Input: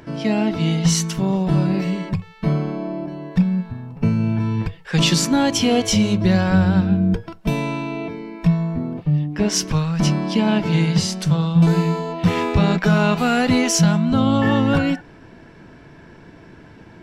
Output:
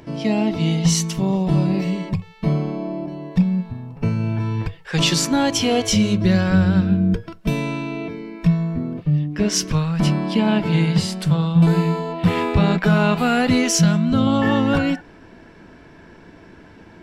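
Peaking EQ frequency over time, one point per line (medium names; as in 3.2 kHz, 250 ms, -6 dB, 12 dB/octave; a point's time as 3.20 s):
peaking EQ -8.5 dB 0.42 oct
1.5 kHz
from 3.92 s 200 Hz
from 5.88 s 830 Hz
from 9.75 s 6 kHz
from 13.49 s 870 Hz
from 14.27 s 130 Hz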